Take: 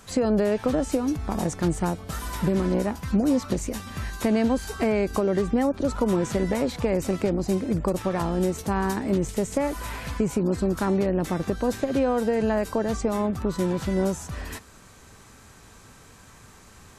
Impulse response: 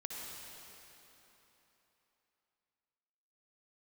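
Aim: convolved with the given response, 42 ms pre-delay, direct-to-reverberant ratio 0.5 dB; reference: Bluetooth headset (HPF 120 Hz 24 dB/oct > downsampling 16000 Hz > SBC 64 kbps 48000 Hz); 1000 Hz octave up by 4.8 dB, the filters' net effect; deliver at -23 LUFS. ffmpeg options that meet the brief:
-filter_complex "[0:a]equalizer=f=1k:t=o:g=6,asplit=2[a][b];[1:a]atrim=start_sample=2205,adelay=42[c];[b][c]afir=irnorm=-1:irlink=0,volume=-0.5dB[d];[a][d]amix=inputs=2:normalize=0,highpass=f=120:w=0.5412,highpass=f=120:w=1.3066,aresample=16000,aresample=44100,volume=-1dB" -ar 48000 -c:a sbc -b:a 64k

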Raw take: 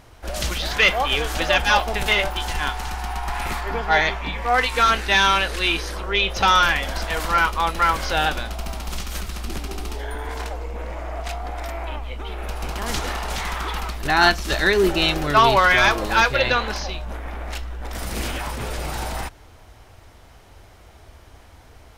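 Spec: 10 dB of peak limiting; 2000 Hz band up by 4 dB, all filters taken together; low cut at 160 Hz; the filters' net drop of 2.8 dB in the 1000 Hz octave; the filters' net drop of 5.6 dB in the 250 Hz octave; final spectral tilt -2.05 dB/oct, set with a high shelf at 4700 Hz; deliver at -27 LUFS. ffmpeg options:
-af "highpass=160,equalizer=f=250:t=o:g=-7.5,equalizer=f=1k:t=o:g=-6.5,equalizer=f=2k:t=o:g=8.5,highshelf=f=4.7k:g=-6.5,volume=-3dB,alimiter=limit=-14.5dB:level=0:latency=1"

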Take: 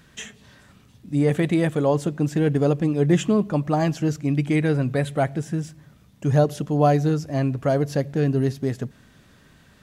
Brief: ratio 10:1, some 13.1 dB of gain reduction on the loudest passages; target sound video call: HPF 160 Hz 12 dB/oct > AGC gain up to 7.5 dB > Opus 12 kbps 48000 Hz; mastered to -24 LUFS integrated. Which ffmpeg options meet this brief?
-af "acompressor=threshold=-26dB:ratio=10,highpass=160,dynaudnorm=m=7.5dB,volume=9.5dB" -ar 48000 -c:a libopus -b:a 12k

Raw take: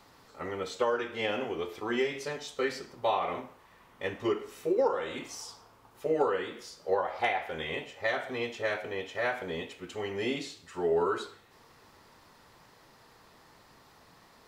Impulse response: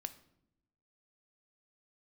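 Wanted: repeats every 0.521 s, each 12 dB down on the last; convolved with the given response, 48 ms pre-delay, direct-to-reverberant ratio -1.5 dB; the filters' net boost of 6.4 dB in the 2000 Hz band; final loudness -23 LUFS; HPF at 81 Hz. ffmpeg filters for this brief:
-filter_complex "[0:a]highpass=81,equalizer=f=2k:t=o:g=7.5,aecho=1:1:521|1042|1563:0.251|0.0628|0.0157,asplit=2[a][b];[1:a]atrim=start_sample=2205,adelay=48[c];[b][c]afir=irnorm=-1:irlink=0,volume=4dB[d];[a][d]amix=inputs=2:normalize=0,volume=4dB"

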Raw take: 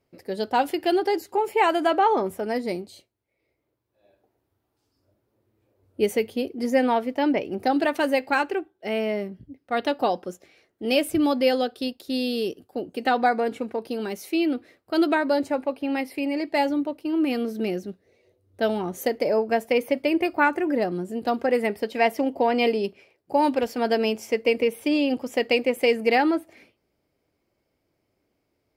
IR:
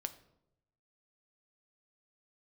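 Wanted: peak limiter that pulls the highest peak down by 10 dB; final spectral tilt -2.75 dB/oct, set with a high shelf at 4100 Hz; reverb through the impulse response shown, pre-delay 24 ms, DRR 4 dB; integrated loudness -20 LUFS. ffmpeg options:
-filter_complex "[0:a]highshelf=f=4.1k:g=6,alimiter=limit=-16dB:level=0:latency=1,asplit=2[a][b];[1:a]atrim=start_sample=2205,adelay=24[c];[b][c]afir=irnorm=-1:irlink=0,volume=-2.5dB[d];[a][d]amix=inputs=2:normalize=0,volume=5.5dB"

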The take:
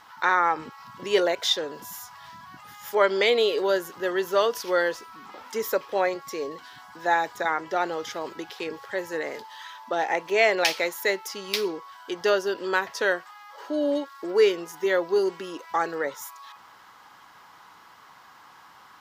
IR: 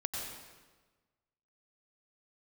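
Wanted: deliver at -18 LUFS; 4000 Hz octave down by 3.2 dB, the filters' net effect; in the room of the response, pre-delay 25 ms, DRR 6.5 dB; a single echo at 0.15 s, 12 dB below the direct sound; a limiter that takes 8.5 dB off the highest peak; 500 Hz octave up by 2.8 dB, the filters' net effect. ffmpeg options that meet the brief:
-filter_complex "[0:a]equalizer=f=500:t=o:g=3.5,equalizer=f=4k:t=o:g=-4,alimiter=limit=-15.5dB:level=0:latency=1,aecho=1:1:150:0.251,asplit=2[a][b];[1:a]atrim=start_sample=2205,adelay=25[c];[b][c]afir=irnorm=-1:irlink=0,volume=-9dB[d];[a][d]amix=inputs=2:normalize=0,volume=8dB"

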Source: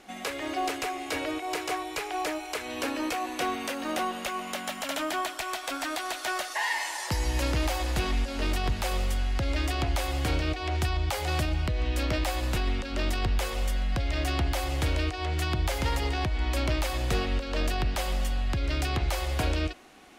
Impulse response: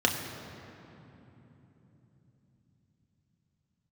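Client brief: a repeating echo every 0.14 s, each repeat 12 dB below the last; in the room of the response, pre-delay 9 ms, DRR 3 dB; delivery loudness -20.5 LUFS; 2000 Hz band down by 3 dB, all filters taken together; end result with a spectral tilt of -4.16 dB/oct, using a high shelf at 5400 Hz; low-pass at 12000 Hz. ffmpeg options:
-filter_complex "[0:a]lowpass=12k,equalizer=f=2k:t=o:g=-5,highshelf=f=5.4k:g=8,aecho=1:1:140|280|420:0.251|0.0628|0.0157,asplit=2[a][b];[1:a]atrim=start_sample=2205,adelay=9[c];[b][c]afir=irnorm=-1:irlink=0,volume=-15.5dB[d];[a][d]amix=inputs=2:normalize=0,volume=7.5dB"

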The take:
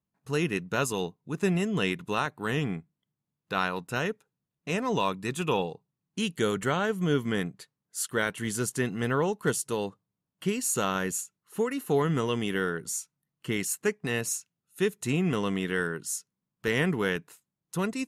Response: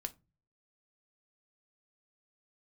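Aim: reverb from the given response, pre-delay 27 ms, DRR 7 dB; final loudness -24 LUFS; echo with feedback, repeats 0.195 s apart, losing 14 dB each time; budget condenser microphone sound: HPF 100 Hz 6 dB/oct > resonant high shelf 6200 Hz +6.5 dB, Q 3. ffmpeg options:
-filter_complex "[0:a]aecho=1:1:195|390:0.2|0.0399,asplit=2[a][b];[1:a]atrim=start_sample=2205,adelay=27[c];[b][c]afir=irnorm=-1:irlink=0,volume=-5dB[d];[a][d]amix=inputs=2:normalize=0,highpass=f=100:p=1,highshelf=f=6.2k:t=q:w=3:g=6.5,volume=2.5dB"

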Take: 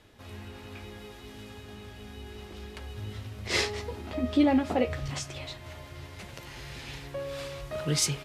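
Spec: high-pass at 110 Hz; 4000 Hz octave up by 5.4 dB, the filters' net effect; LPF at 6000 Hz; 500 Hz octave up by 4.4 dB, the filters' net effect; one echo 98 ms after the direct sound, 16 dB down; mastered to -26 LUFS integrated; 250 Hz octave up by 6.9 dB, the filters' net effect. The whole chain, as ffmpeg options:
-af "highpass=110,lowpass=6k,equalizer=f=250:t=o:g=7,equalizer=f=500:t=o:g=3.5,equalizer=f=4k:t=o:g=8,aecho=1:1:98:0.158,volume=-1.5dB"

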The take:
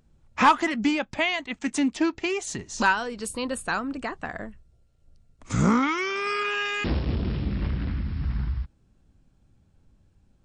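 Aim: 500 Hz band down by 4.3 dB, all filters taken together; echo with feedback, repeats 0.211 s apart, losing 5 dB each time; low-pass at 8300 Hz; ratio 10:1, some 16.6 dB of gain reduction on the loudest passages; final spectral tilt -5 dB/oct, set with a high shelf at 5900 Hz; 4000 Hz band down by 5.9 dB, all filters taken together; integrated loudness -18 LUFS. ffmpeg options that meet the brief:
-af "lowpass=8.3k,equalizer=f=500:t=o:g=-6,equalizer=f=4k:t=o:g=-7,highshelf=f=5.9k:g=-5.5,acompressor=threshold=-32dB:ratio=10,aecho=1:1:211|422|633|844|1055|1266|1477:0.562|0.315|0.176|0.0988|0.0553|0.031|0.0173,volume=17.5dB"

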